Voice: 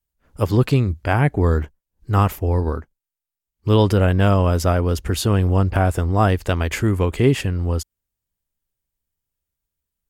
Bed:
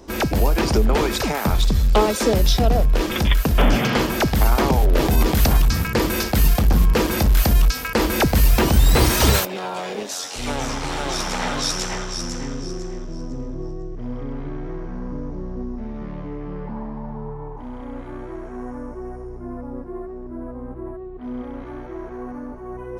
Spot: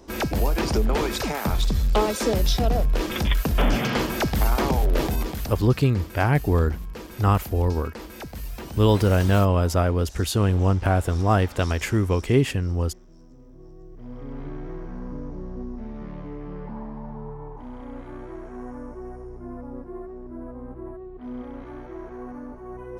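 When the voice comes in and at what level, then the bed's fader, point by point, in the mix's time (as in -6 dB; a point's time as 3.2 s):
5.10 s, -3.0 dB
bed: 4.99 s -4.5 dB
5.65 s -19.5 dB
13.41 s -19.5 dB
14.41 s -4.5 dB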